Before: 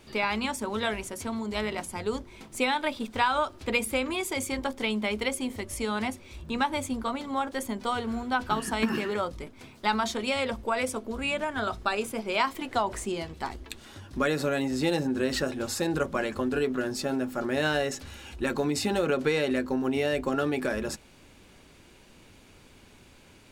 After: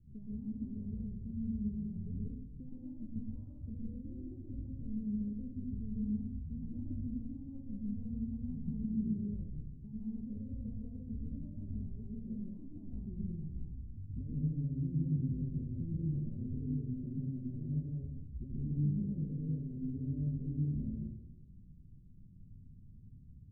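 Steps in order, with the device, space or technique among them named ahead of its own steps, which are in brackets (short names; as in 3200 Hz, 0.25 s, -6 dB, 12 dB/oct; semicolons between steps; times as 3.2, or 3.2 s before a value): club heard from the street (limiter -19.5 dBFS, peak gain reduction 8 dB; LPF 170 Hz 24 dB/oct; reverb RT60 1.1 s, pre-delay 0.115 s, DRR -4 dB); gain -1 dB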